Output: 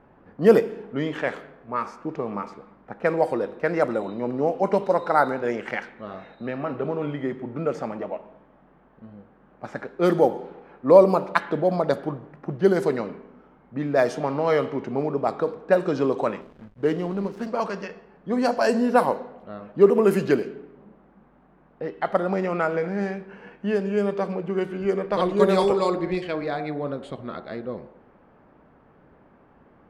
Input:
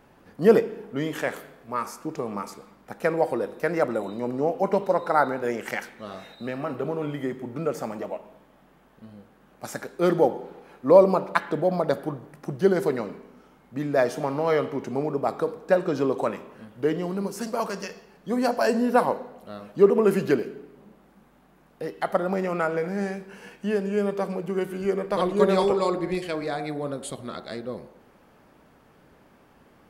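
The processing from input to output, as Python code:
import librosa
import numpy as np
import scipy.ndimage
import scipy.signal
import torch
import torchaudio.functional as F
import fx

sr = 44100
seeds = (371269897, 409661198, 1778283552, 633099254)

y = fx.env_lowpass(x, sr, base_hz=1600.0, full_db=-16.0)
y = fx.backlash(y, sr, play_db=-40.0, at=(16.41, 17.47))
y = y * librosa.db_to_amplitude(1.5)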